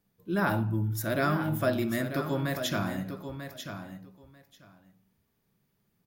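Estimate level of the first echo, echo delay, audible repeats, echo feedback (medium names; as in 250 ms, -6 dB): -9.0 dB, 942 ms, 2, 15%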